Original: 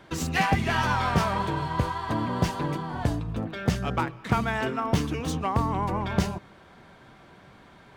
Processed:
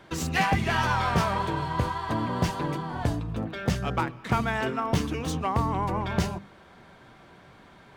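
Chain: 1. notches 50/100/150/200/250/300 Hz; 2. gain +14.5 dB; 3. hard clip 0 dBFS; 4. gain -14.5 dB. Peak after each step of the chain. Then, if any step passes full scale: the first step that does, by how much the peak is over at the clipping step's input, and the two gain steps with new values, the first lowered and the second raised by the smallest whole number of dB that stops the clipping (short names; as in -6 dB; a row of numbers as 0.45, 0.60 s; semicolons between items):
-9.5, +5.0, 0.0, -14.5 dBFS; step 2, 5.0 dB; step 2 +9.5 dB, step 4 -9.5 dB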